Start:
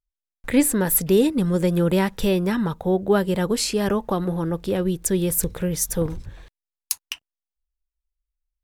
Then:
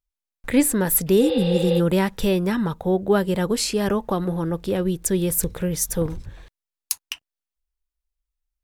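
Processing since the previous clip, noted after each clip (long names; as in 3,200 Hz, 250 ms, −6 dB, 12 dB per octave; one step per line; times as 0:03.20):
healed spectral selection 0:01.26–0:01.77, 480–5,300 Hz before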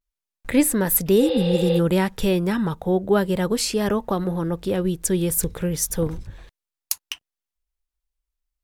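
pitch vibrato 0.32 Hz 34 cents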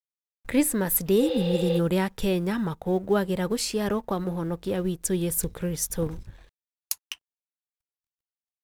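mu-law and A-law mismatch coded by A
level −4 dB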